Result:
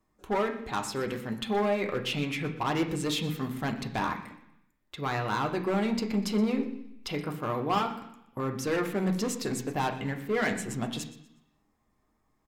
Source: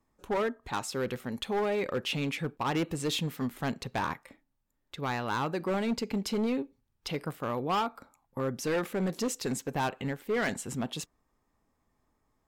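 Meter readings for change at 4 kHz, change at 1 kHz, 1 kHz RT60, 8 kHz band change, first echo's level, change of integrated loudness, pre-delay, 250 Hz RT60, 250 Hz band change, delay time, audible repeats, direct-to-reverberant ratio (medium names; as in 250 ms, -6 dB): +1.0 dB, +2.0 dB, 0.75 s, 0.0 dB, -16.5 dB, +1.5 dB, 3 ms, 0.90 s, +3.0 dB, 122 ms, 2, 2.5 dB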